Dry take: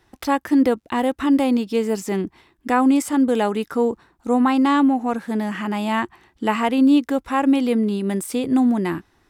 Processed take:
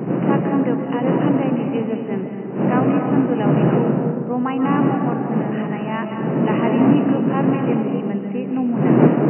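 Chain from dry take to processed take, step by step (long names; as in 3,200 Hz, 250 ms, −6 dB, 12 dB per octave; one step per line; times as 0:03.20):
wind on the microphone 270 Hz −15 dBFS
comb and all-pass reverb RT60 2 s, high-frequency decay 0.35×, pre-delay 110 ms, DRR 3.5 dB
brick-wall band-pass 120–3,000 Hz
level −4.5 dB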